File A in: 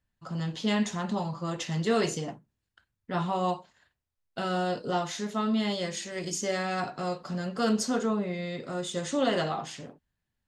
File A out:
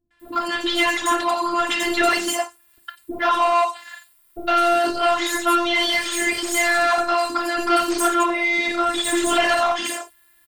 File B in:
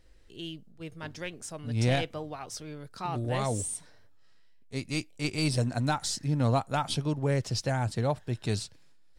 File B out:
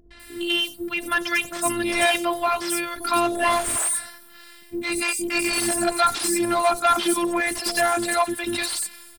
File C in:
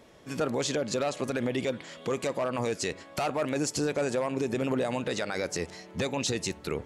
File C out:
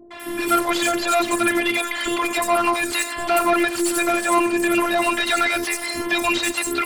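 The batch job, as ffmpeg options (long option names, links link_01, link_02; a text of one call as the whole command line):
ffmpeg -i in.wav -filter_complex "[0:a]equalizer=frequency=450:width=0.84:gain=-10,asplit=2[link_01][link_02];[link_02]acompressor=threshold=-41dB:ratio=6,volume=2dB[link_03];[link_01][link_03]amix=inputs=2:normalize=0,aexciter=amount=10.5:drive=3.9:freq=8700,afftfilt=real='hypot(re,im)*cos(PI*b)':imag='0':win_size=512:overlap=0.75,asplit=2[link_04][link_05];[link_05]highpass=frequency=720:poles=1,volume=33dB,asoftclip=type=tanh:threshold=-6.5dB[link_06];[link_04][link_06]amix=inputs=2:normalize=0,lowpass=frequency=2700:poles=1,volume=-6dB,acrossover=split=450|5700[link_07][link_08][link_09];[link_08]adelay=110[link_10];[link_09]adelay=200[link_11];[link_07][link_10][link_11]amix=inputs=3:normalize=0" out.wav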